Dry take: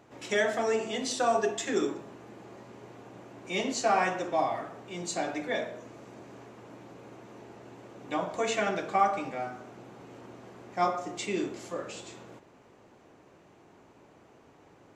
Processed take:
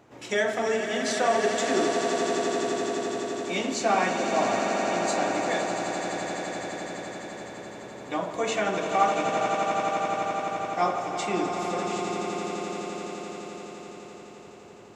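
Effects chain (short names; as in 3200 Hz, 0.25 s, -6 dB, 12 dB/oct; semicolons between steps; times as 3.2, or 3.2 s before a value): swelling echo 85 ms, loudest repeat 8, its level -10 dB; gain +1.5 dB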